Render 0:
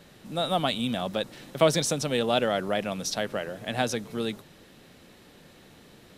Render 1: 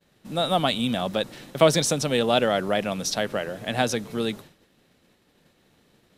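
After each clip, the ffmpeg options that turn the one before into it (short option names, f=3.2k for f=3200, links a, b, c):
-af "agate=range=-33dB:threshold=-43dB:ratio=3:detection=peak,volume=3.5dB"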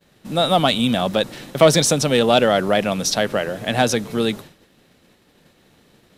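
-af "acontrast=71"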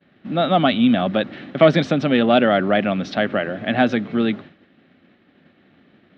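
-af "highpass=110,equalizer=f=130:t=q:w=4:g=-6,equalizer=f=260:t=q:w=4:g=4,equalizer=f=470:t=q:w=4:g=-8,equalizer=f=950:t=q:w=4:g=-10,equalizer=f=2.6k:t=q:w=4:g=-3,lowpass=f=2.9k:w=0.5412,lowpass=f=2.9k:w=1.3066,volume=2.5dB"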